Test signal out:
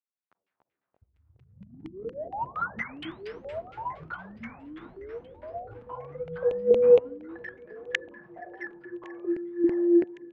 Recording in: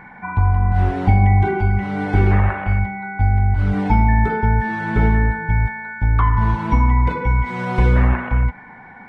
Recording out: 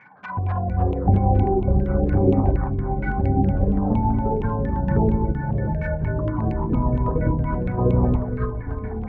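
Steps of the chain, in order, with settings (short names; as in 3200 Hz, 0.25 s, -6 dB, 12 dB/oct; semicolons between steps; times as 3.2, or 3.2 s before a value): HPF 120 Hz 12 dB/oct; treble ducked by the level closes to 750 Hz, closed at -19 dBFS; Schroeder reverb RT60 3.5 s, combs from 33 ms, DRR 8.5 dB; LFO low-pass saw down 4.3 Hz 360–2600 Hz; envelope flanger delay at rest 10.5 ms, full sweep at -16.5 dBFS; on a send: thinning echo 1.11 s, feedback 69%, high-pass 920 Hz, level -19 dB; on the sum: echoes that change speed 0.156 s, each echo -6 st, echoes 3; upward expander 1.5:1, over -31 dBFS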